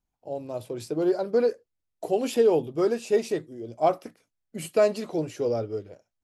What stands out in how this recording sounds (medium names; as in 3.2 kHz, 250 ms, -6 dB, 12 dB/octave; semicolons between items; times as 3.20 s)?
noise floor -83 dBFS; spectral tilt -5.5 dB/octave